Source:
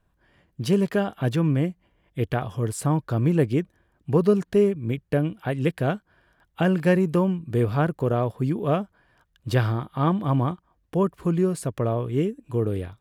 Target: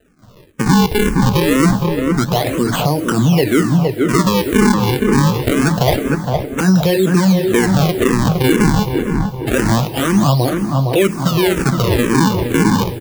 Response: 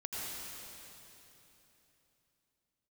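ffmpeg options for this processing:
-filter_complex "[0:a]highpass=f=140:w=0.5412,highpass=f=140:w=1.3066,bandreject=f=7200:w=5.4,bandreject=f=301.6:t=h:w=4,bandreject=f=603.2:t=h:w=4,bandreject=f=904.8:t=h:w=4,asplit=2[s0][s1];[s1]acompressor=threshold=0.0447:ratio=6,volume=0.75[s2];[s0][s2]amix=inputs=2:normalize=0,flanger=delay=7.6:depth=3.9:regen=-55:speed=0.19:shape=triangular,acrusher=samples=39:mix=1:aa=0.000001:lfo=1:lforange=62.4:lforate=0.26,asplit=2[s3][s4];[s4]adelay=462,lowpass=f=1600:p=1,volume=0.335,asplit=2[s5][s6];[s6]adelay=462,lowpass=f=1600:p=1,volume=0.52,asplit=2[s7][s8];[s8]adelay=462,lowpass=f=1600:p=1,volume=0.52,asplit=2[s9][s10];[s10]adelay=462,lowpass=f=1600:p=1,volume=0.52,asplit=2[s11][s12];[s12]adelay=462,lowpass=f=1600:p=1,volume=0.52,asplit=2[s13][s14];[s14]adelay=462,lowpass=f=1600:p=1,volume=0.52[s15];[s3][s5][s7][s9][s11][s13][s15]amix=inputs=7:normalize=0,asplit=2[s16][s17];[1:a]atrim=start_sample=2205,highshelf=f=8000:g=11.5[s18];[s17][s18]afir=irnorm=-1:irlink=0,volume=0.0668[s19];[s16][s19]amix=inputs=2:normalize=0,alimiter=level_in=14.1:limit=0.891:release=50:level=0:latency=1,asplit=2[s20][s21];[s21]afreqshift=-2[s22];[s20][s22]amix=inputs=2:normalize=1,volume=0.794"

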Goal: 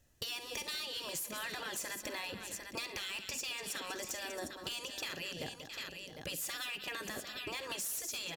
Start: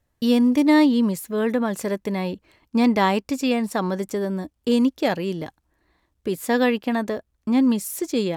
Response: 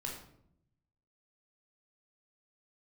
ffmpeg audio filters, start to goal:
-af "afftfilt=real='re*lt(hypot(re,im),0.178)':imag='im*lt(hypot(re,im),0.178)':win_size=1024:overlap=0.75,equalizer=f=1000:t=o:w=0.67:g=-6,equalizer=f=2500:t=o:w=0.67:g=6,equalizer=f=6300:t=o:w=0.67:g=7,aecho=1:1:49|67|191|667|751:0.158|0.1|0.178|0.1|0.211,alimiter=limit=0.1:level=0:latency=1:release=365,highshelf=f=6900:g=5.5,bandreject=f=2200:w=7.6,volume=26.6,asoftclip=hard,volume=0.0376,acompressor=threshold=0.0112:ratio=6,volume=1.12"

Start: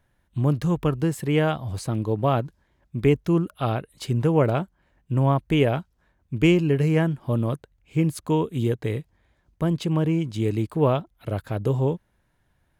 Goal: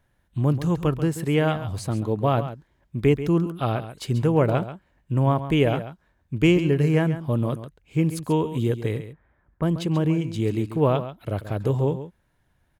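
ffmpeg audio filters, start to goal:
-filter_complex "[0:a]asettb=1/sr,asplit=3[s0][s1][s2];[s0]atrim=end=8.994[s3];[s1]atrim=start=8.99:end=9.63,asetpts=PTS-STARTPTS,afade=t=in:d=0.004:c=qsin,afade=t=out:st=0.636:d=0.004:c=qsin,lowpass=f=1500:t=q:w=1.7[s4];[s2]atrim=start=9.626[s5];[s3][s4]acrossfade=d=0.004:c1=hsin:c2=qsin[s6];[s6][s5]acrossfade=d=0.004:c1=qsin:c2=hsin,aecho=1:1:136:0.251"

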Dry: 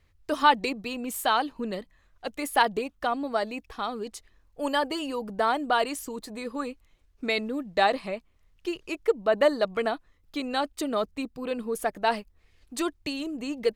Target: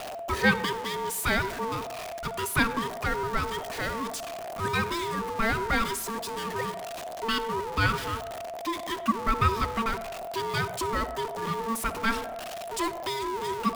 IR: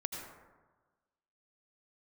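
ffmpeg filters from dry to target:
-filter_complex "[0:a]aeval=exprs='val(0)+0.5*0.0398*sgn(val(0))':c=same,aeval=exprs='val(0)*sin(2*PI*680*n/s)':c=same,bandreject=f=60:t=h:w=6,bandreject=f=120:t=h:w=6,bandreject=f=180:t=h:w=6,asplit=2[s0][s1];[1:a]atrim=start_sample=2205,asetrate=66150,aresample=44100[s2];[s1][s2]afir=irnorm=-1:irlink=0,volume=0.473[s3];[s0][s3]amix=inputs=2:normalize=0,volume=0.75"

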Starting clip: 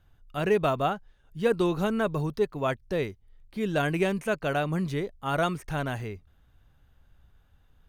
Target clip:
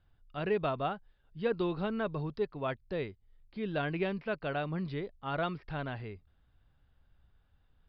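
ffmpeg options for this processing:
-af "aresample=11025,aresample=44100,volume=0.447"

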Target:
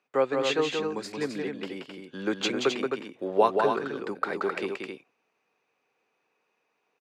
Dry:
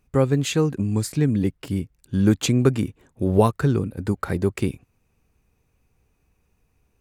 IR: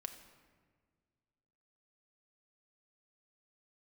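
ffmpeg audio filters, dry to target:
-filter_complex "[0:a]highpass=f=150:w=0.5412,highpass=f=150:w=1.3066,acrossover=split=400 5000:gain=0.0708 1 0.0631[s0][s1][s2];[s0][s1][s2]amix=inputs=3:normalize=0,aecho=1:1:177.8|262.4:0.562|0.501"

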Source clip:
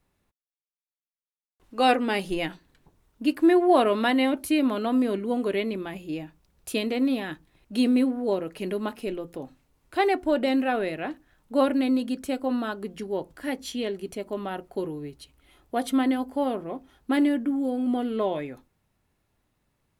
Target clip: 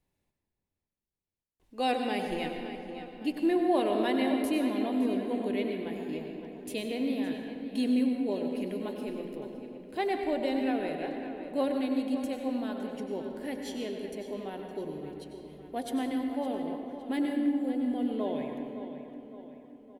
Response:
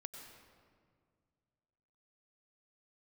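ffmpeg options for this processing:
-filter_complex "[0:a]equalizer=f=1300:w=3.2:g=-10,asplit=2[s0][s1];[s1]adelay=563,lowpass=f=4100:p=1,volume=0.299,asplit=2[s2][s3];[s3]adelay=563,lowpass=f=4100:p=1,volume=0.5,asplit=2[s4][s5];[s5]adelay=563,lowpass=f=4100:p=1,volume=0.5,asplit=2[s6][s7];[s7]adelay=563,lowpass=f=4100:p=1,volume=0.5,asplit=2[s8][s9];[s9]adelay=563,lowpass=f=4100:p=1,volume=0.5[s10];[s0][s2][s4][s6][s8][s10]amix=inputs=6:normalize=0[s11];[1:a]atrim=start_sample=2205[s12];[s11][s12]afir=irnorm=-1:irlink=0,volume=0.794"

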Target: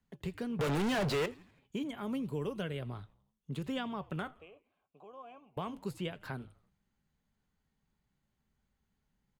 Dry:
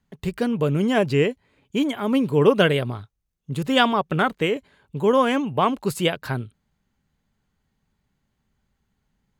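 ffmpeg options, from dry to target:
-filter_complex "[0:a]acrossover=split=180|4200[s0][s1][s2];[s0]acompressor=threshold=0.02:ratio=4[s3];[s1]acompressor=threshold=0.0282:ratio=4[s4];[s2]acompressor=threshold=0.00224:ratio=4[s5];[s3][s4][s5]amix=inputs=3:normalize=0,asettb=1/sr,asplit=3[s6][s7][s8];[s6]atrim=end=0.594[s9];[s7]atrim=start=0.59:end=1.26,asetpts=PTS-STARTPTS,afade=t=in:d=0.004:c=qsin,afade=t=out:st=0.666:d=0.004:c=qsin,asplit=2[s10][s11];[s11]highpass=f=720:p=1,volume=112,asoftclip=type=tanh:threshold=0.141[s12];[s10][s12]amix=inputs=2:normalize=0,lowpass=f=3300:p=1,volume=0.501[s13];[s8]atrim=start=1.256[s14];[s9][s13]acrossfade=d=0.004:c1=hsin:c2=qsin[s15];[s15][s14]acrossfade=d=0.004:c1=qsin:c2=hsin,asettb=1/sr,asplit=3[s16][s17][s18];[s16]atrim=end=4.274[s19];[s17]atrim=start=4.27:end=5.57,asetpts=PTS-STARTPTS,afade=t=in:d=0.004:c=qsin,afade=t=out:st=1.296:d=0.004:c=qsin,asplit=3[s20][s21][s22];[s20]bandpass=f=730:t=q:w=8,volume=1[s23];[s21]bandpass=f=1090:t=q:w=8,volume=0.501[s24];[s22]bandpass=f=2440:t=q:w=8,volume=0.355[s25];[s23][s24][s25]amix=inputs=3:normalize=0[s26];[s18]atrim=start=5.566[s27];[s19][s26]acrossfade=d=0.004:c1=hsin:c2=qsin[s28];[s28][s27]acrossfade=d=0.004:c1=qsin:c2=hsin,flanger=delay=4:depth=1.9:regen=-81:speed=0.8:shape=sinusoidal,asplit=2[s29][s30];[s30]asplit=4[s31][s32][s33][s34];[s31]adelay=83,afreqshift=-80,volume=0.0708[s35];[s32]adelay=166,afreqshift=-160,volume=0.038[s36];[s33]adelay=249,afreqshift=-240,volume=0.0207[s37];[s34]adelay=332,afreqshift=-320,volume=0.0111[s38];[s35][s36][s37][s38]amix=inputs=4:normalize=0[s39];[s29][s39]amix=inputs=2:normalize=0,volume=0.668"

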